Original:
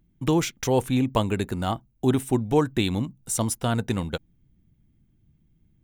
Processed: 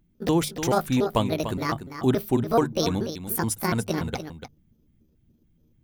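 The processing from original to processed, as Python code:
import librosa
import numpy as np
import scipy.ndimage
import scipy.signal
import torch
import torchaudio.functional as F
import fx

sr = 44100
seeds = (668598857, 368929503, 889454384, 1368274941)

y = fx.pitch_trill(x, sr, semitones=7.5, every_ms=143)
y = fx.hum_notches(y, sr, base_hz=50, count=3)
y = y + 10.0 ** (-10.0 / 20.0) * np.pad(y, (int(293 * sr / 1000.0), 0))[:len(y)]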